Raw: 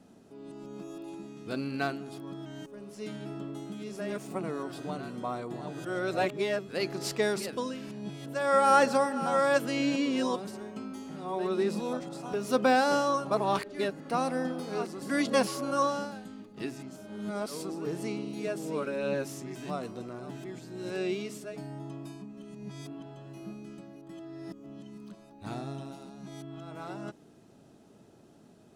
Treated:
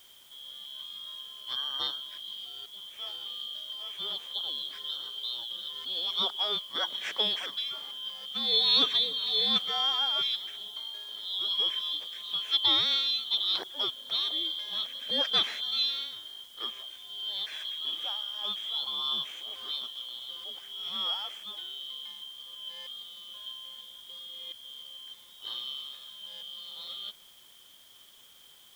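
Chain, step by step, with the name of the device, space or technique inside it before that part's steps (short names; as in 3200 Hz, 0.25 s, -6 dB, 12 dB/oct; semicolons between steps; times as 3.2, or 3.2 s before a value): split-band scrambled radio (four-band scrambler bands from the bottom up 2413; BPF 340–3100 Hz; white noise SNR 26 dB); gain +3 dB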